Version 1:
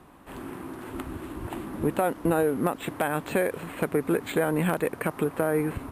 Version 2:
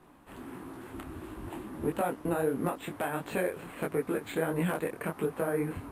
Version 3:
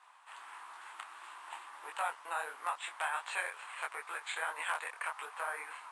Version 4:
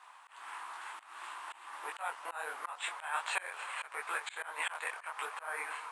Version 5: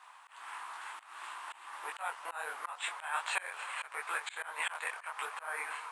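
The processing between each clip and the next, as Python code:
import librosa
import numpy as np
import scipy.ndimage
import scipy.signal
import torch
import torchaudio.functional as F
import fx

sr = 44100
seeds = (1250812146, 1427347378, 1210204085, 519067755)

y1 = fx.detune_double(x, sr, cents=52)
y1 = y1 * librosa.db_to_amplitude(-2.0)
y2 = scipy.signal.sosfilt(scipy.signal.ellip(3, 1.0, 60, [930.0, 8700.0], 'bandpass', fs=sr, output='sos'), y1)
y2 = y2 * librosa.db_to_amplitude(3.0)
y3 = fx.echo_filtered(y2, sr, ms=244, feedback_pct=78, hz=4100.0, wet_db=-21.0)
y3 = fx.auto_swell(y3, sr, attack_ms=211.0)
y3 = y3 * librosa.db_to_amplitude(5.0)
y4 = fx.low_shelf(y3, sr, hz=370.0, db=-6.5)
y4 = y4 * librosa.db_to_amplitude(1.0)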